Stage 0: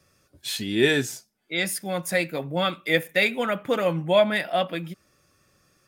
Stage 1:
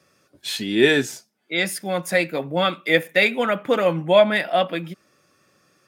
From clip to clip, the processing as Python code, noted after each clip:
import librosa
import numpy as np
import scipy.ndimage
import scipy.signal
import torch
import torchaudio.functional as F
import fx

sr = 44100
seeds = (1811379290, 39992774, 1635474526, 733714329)

y = scipy.signal.sosfilt(scipy.signal.butter(2, 170.0, 'highpass', fs=sr, output='sos'), x)
y = fx.high_shelf(y, sr, hz=6300.0, db=-7.0)
y = y * 10.0 ** (4.5 / 20.0)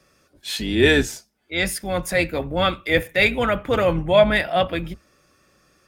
y = fx.octave_divider(x, sr, octaves=2, level_db=-4.0)
y = fx.transient(y, sr, attack_db=-5, sustain_db=0)
y = y * 10.0 ** (1.5 / 20.0)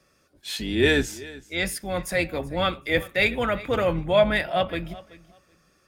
y = fx.echo_feedback(x, sr, ms=380, feedback_pct=18, wet_db=-19.5)
y = y * 10.0 ** (-4.0 / 20.0)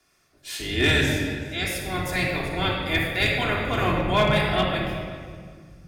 y = fx.spec_clip(x, sr, under_db=14)
y = fx.room_shoebox(y, sr, seeds[0], volume_m3=2900.0, walls='mixed', distance_m=3.2)
y = np.clip(y, -10.0 ** (-8.5 / 20.0), 10.0 ** (-8.5 / 20.0))
y = y * 10.0 ** (-4.5 / 20.0)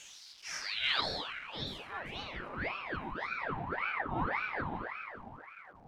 y = x + 0.5 * 10.0 ** (-33.5 / 20.0) * np.sign(x)
y = fx.filter_sweep_bandpass(y, sr, from_hz=4500.0, to_hz=470.0, start_s=0.27, end_s=3.34, q=4.9)
y = fx.ring_lfo(y, sr, carrier_hz=1100.0, swing_pct=75, hz=1.8)